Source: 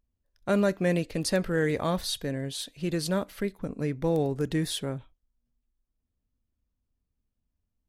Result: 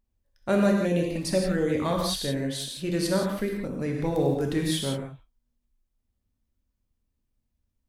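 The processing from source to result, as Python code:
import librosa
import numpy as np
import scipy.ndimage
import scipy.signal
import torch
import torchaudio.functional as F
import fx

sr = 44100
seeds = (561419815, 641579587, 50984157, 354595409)

y = fx.env_flanger(x, sr, rest_ms=6.0, full_db=-21.5, at=(0.73, 1.84), fade=0.02)
y = fx.rev_gated(y, sr, seeds[0], gate_ms=200, shape='flat', drr_db=0.0)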